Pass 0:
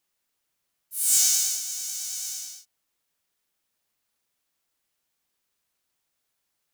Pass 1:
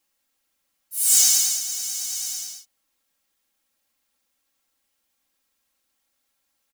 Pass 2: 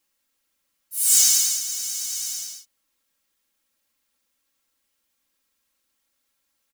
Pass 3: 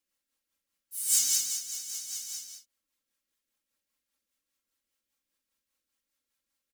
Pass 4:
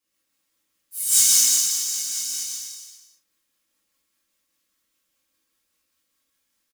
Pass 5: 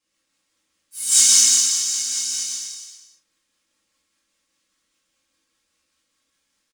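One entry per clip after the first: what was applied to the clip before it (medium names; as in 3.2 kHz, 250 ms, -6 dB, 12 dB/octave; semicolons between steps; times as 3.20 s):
comb 3.7 ms, depth 77%; trim +2 dB
peaking EQ 740 Hz -9 dB 0.21 oct
rotary cabinet horn 5 Hz; trim -6.5 dB
on a send: bouncing-ball echo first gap 130 ms, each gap 0.9×, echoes 5; on the sum: gated-style reverb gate 90 ms flat, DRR -7 dB
Savitzky-Golay filter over 9 samples; trim +4.5 dB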